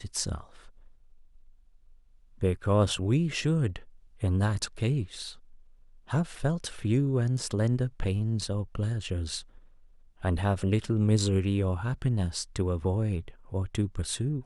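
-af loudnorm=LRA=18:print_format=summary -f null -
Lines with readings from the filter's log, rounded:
Input Integrated:    -29.5 LUFS
Input True Peak:     -11.4 dBTP
Input LRA:             2.4 LU
Input Threshold:     -40.4 LUFS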